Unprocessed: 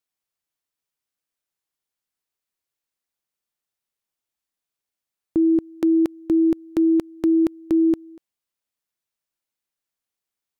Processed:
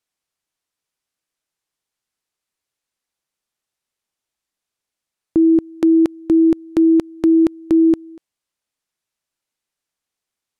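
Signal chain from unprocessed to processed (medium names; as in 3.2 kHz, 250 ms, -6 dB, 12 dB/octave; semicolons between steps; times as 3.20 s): low-pass 11 kHz; trim +5 dB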